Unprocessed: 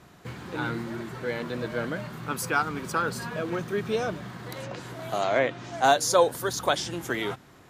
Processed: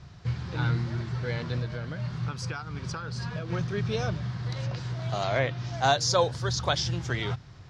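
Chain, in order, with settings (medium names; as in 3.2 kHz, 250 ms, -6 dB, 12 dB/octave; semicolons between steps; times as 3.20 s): four-pole ladder low-pass 6 kHz, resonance 50%; 1.58–3.50 s: compression 6:1, threshold -41 dBFS, peak gain reduction 12 dB; resonant low shelf 170 Hz +13.5 dB, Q 1.5; trim +6.5 dB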